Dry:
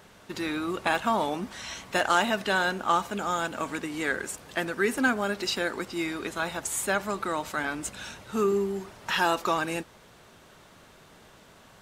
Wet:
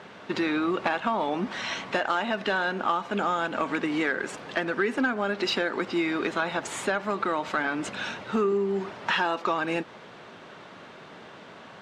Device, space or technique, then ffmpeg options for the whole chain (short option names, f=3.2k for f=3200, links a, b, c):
AM radio: -af "highpass=170,lowpass=3.4k,acompressor=threshold=-31dB:ratio=6,asoftclip=type=tanh:threshold=-21.5dB,volume=9dB"